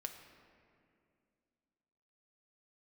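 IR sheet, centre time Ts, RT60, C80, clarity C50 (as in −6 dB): 34 ms, 2.4 s, 8.5 dB, 7.5 dB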